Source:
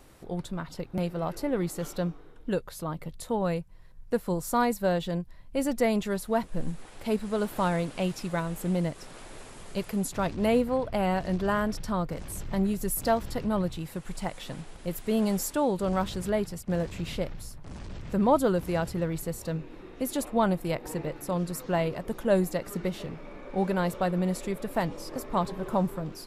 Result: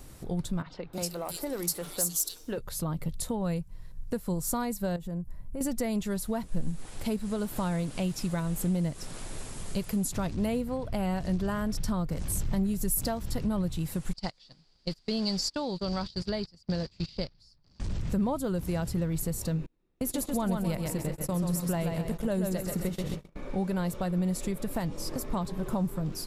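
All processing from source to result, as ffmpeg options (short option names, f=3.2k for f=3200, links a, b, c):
-filter_complex "[0:a]asettb=1/sr,asplit=3[a][b][c];[a]atrim=end=0.624[d];[b]atrim=start=0.62:end=2.58,asetpts=PTS-STARTPTS,afade=t=in:d=0.004:c=qsin,afade=t=out:st=1.956:d=0.004:c=qsin,bass=f=250:g=-13,treble=f=4k:g=15,asoftclip=type=hard:threshold=-23.5dB,acrossover=split=160|2900[e][f][g];[e]adelay=40[h];[g]adelay=310[i];[h][f][i]amix=inputs=3:normalize=0,atrim=end_sample=86436[j];[c]atrim=start=2.576[k];[d][j]acrossfade=d=0.004:c1=hsin:c2=qsin[l];[l][k]acrossfade=d=0.004:c1=qsin:c2=hsin,asettb=1/sr,asplit=3[m][n][o];[m]atrim=end=4.964[p];[n]atrim=start=4.96:end=5.61,asetpts=PTS-STARTPTS,afade=t=in:d=0.004:c=qsin,afade=t=out:st=0.646:d=0.004:c=qsin,equalizer=f=3.8k:t=o:w=1.6:g=-15,acompressor=threshold=-39dB:ratio=2.5:attack=3.2:release=140:knee=1:detection=peak[q];[o]atrim=start=5.606[r];[p][q]acrossfade=d=0.004:c1=hsin:c2=qsin[s];[s][r]acrossfade=d=0.004:c1=qsin:c2=hsin,asettb=1/sr,asplit=3[t][u][v];[t]atrim=end=14.134[w];[u]atrim=start=14.13:end=17.8,asetpts=PTS-STARTPTS,afade=t=in:d=0.004:c=qsin,afade=t=out:st=3.666:d=0.004:c=qsin,agate=range=-26dB:threshold=-33dB:ratio=16:release=100:detection=peak,lowpass=f=4.7k:t=q:w=11,lowshelf=f=230:g=-6[x];[v]atrim=start=17.796[y];[w][x]acrossfade=d=0.004:c1=hsin:c2=qsin[z];[z][y]acrossfade=d=0.004:c1=qsin:c2=hsin,asettb=1/sr,asplit=3[aa][ab][ac];[aa]atrim=end=19.664[ad];[ab]atrim=start=19.66:end=23.36,asetpts=PTS-STARTPTS,afade=t=in:d=0.004:c=qsin,afade=t=out:st=3.696:d=0.004:c=qsin,aecho=1:1:132|264|396|528|660:0.562|0.219|0.0855|0.0334|0.013,atrim=end_sample=163170,agate=range=-36dB:threshold=-37dB:ratio=16:release=100:detection=peak[ae];[ac]atrim=start=23.356[af];[ad][ae]acrossfade=d=0.004:c1=hsin:c2=qsin[ag];[ag][af]acrossfade=d=0.004:c1=qsin:c2=hsin,acompressor=threshold=-34dB:ratio=2.5,bass=f=250:g=9,treble=f=4k:g=8"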